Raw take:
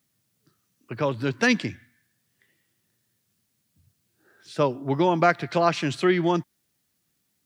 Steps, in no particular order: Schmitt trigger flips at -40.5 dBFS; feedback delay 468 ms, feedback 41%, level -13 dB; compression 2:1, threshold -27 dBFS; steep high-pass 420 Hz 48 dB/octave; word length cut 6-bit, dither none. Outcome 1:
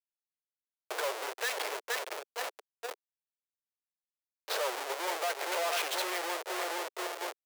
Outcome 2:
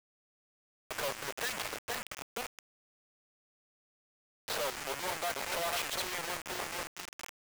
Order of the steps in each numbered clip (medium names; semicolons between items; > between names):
feedback delay > compression > Schmitt trigger > word length cut > steep high-pass; compression > feedback delay > Schmitt trigger > steep high-pass > word length cut